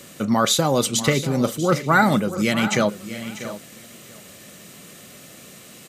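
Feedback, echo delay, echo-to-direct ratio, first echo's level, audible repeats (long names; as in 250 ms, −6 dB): repeats not evenly spaced, 641 ms, −12.0 dB, −14.5 dB, 3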